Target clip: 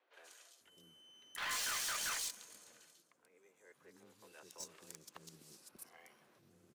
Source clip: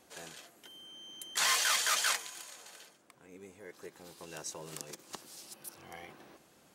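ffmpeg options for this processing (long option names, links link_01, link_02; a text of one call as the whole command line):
ffmpeg -i in.wav -filter_complex "[0:a]equalizer=frequency=780:width=2.7:gain=-4.5,acrossover=split=400|3500[link_01][link_02][link_03];[link_03]adelay=130[link_04];[link_01]adelay=590[link_05];[link_05][link_02][link_04]amix=inputs=3:normalize=0,afreqshift=13,volume=32dB,asoftclip=hard,volume=-32dB,asetrate=42845,aresample=44100,atempo=1.0293,aeval=exprs='0.0398*(cos(1*acos(clip(val(0)/0.0398,-1,1)))-cos(1*PI/2))+0.001*(cos(2*acos(clip(val(0)/0.0398,-1,1)))-cos(2*PI/2))+0.00794*(cos(3*acos(clip(val(0)/0.0398,-1,1)))-cos(3*PI/2))+0.000316*(cos(7*acos(clip(val(0)/0.0398,-1,1)))-cos(7*PI/2))':channel_layout=same,volume=-1dB" out.wav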